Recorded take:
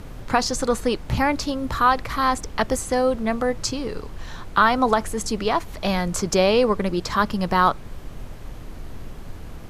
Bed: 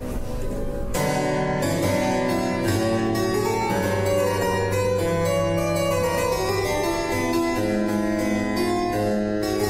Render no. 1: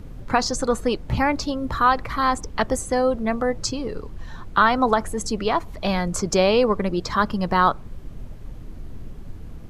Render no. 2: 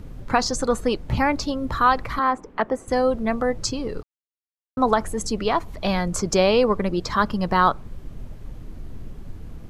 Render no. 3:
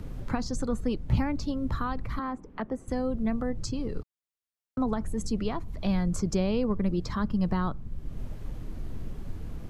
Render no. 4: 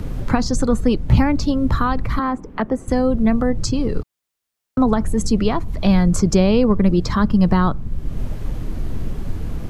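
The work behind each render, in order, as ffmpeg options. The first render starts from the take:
ffmpeg -i in.wav -af "afftdn=noise_reduction=9:noise_floor=-37" out.wav
ffmpeg -i in.wav -filter_complex "[0:a]asettb=1/sr,asplit=3[link_01][link_02][link_03];[link_01]atrim=end=2.194[link_04];[link_02]atrim=start=2.19:end=2.88,asetpts=PTS-STARTPTS,afade=type=in:duration=0.004:curve=qsin,afade=type=out:start_time=0.686:duration=0.004:curve=qsin,acrossover=split=190 2400:gain=0.126 1 0.126[link_05][link_06][link_07];[link_05][link_06][link_07]amix=inputs=3:normalize=0[link_08];[link_03]atrim=start=2.876[link_09];[link_04][link_08]acrossfade=duration=0.004:curve1=hsin:curve2=qsin[link_10];[link_10][link_09]acrossfade=duration=0.004:curve1=qsin:curve2=hsin,asplit=3[link_11][link_12][link_13];[link_11]atrim=end=4.03,asetpts=PTS-STARTPTS,afade=type=out:start_time=4.026:duration=0.004:curve=hsin[link_14];[link_12]atrim=start=4.03:end=4.77,asetpts=PTS-STARTPTS,volume=0[link_15];[link_13]atrim=start=4.77,asetpts=PTS-STARTPTS,afade=type=in:duration=0.004:curve=hsin[link_16];[link_14][link_15][link_16]concat=n=3:v=0:a=1" out.wav
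ffmpeg -i in.wav -filter_complex "[0:a]acrossover=split=270[link_01][link_02];[link_02]acompressor=threshold=-46dB:ratio=2[link_03];[link_01][link_03]amix=inputs=2:normalize=0" out.wav
ffmpeg -i in.wav -af "volume=12dB,alimiter=limit=-3dB:level=0:latency=1" out.wav

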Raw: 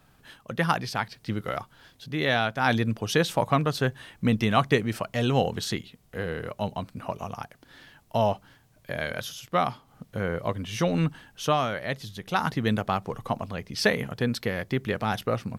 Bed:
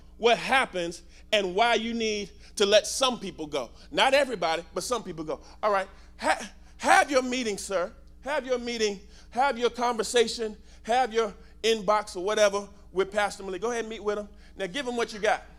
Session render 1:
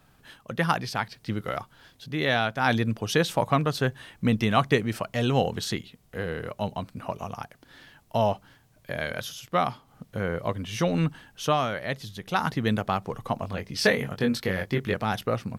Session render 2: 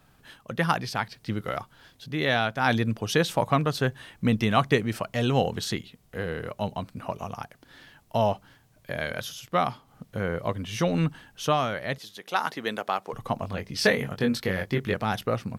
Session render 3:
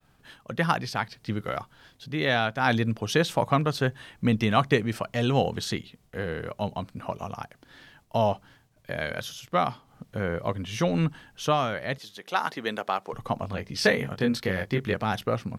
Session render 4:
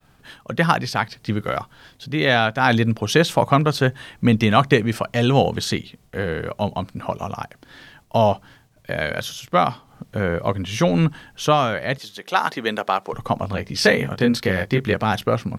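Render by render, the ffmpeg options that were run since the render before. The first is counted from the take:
ffmpeg -i in.wav -filter_complex "[0:a]asettb=1/sr,asplit=3[link_01][link_02][link_03];[link_01]atrim=end=13.404[link_04];[link_02]atrim=start=13.4:end=14.94,asetpts=PTS-STARTPTS,afade=type=in:duration=0.004:curve=qsin,afade=type=out:start_time=1.536:duration=0.004:curve=qsin,asplit=2[link_05][link_06];[link_06]adelay=21,volume=-5dB[link_07];[link_05][link_07]amix=inputs=2:normalize=0,atrim=end_sample=67914[link_08];[link_03]atrim=start=14.936[link_09];[link_04][link_08]acrossfade=duration=0.004:curve1=hsin:curve2=qsin[link_10];[link_10][link_09]acrossfade=duration=0.004:curve1=qsin:curve2=hsin" out.wav
ffmpeg -i in.wav -filter_complex "[0:a]asettb=1/sr,asplit=3[link_01][link_02][link_03];[link_01]atrim=end=11.984[link_04];[link_02]atrim=start=11.98:end=13.13,asetpts=PTS-STARTPTS,afade=type=in:duration=0.004:curve=qsin,afade=type=out:start_time=1.146:duration=0.004:curve=qsin,highpass=390[link_05];[link_03]atrim=start=13.126[link_06];[link_04][link_05]acrossfade=duration=0.004:curve1=hsin:curve2=qsin[link_07];[link_07][link_06]acrossfade=duration=0.004:curve1=qsin:curve2=hsin" out.wav
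ffmpeg -i in.wav -af "agate=range=-33dB:threshold=-56dB:ratio=3:detection=peak,highshelf=frequency=11000:gain=-6" out.wav
ffmpeg -i in.wav -af "volume=7dB,alimiter=limit=-3dB:level=0:latency=1" out.wav

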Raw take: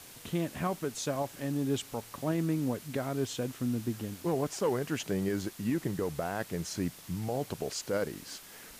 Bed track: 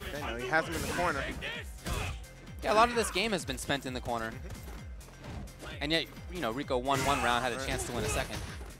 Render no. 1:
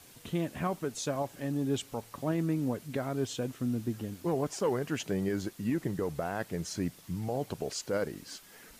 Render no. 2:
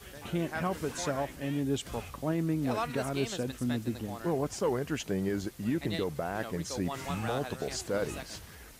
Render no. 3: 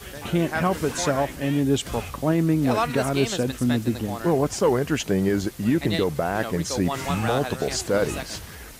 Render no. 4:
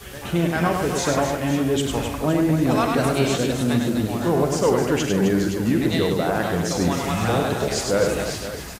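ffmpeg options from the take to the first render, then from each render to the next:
ffmpeg -i in.wav -af "afftdn=noise_reduction=6:noise_floor=-51" out.wav
ffmpeg -i in.wav -i bed.wav -filter_complex "[1:a]volume=-9.5dB[link_01];[0:a][link_01]amix=inputs=2:normalize=0" out.wav
ffmpeg -i in.wav -af "volume=9.5dB" out.wav
ffmpeg -i in.wav -filter_complex "[0:a]asplit=2[link_01][link_02];[link_02]adelay=46,volume=-11dB[link_03];[link_01][link_03]amix=inputs=2:normalize=0,aecho=1:1:100|260|516|925.6|1581:0.631|0.398|0.251|0.158|0.1" out.wav

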